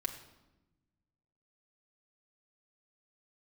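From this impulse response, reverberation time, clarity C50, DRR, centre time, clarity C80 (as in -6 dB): 1.0 s, 10.0 dB, 0.5 dB, 15 ms, 12.0 dB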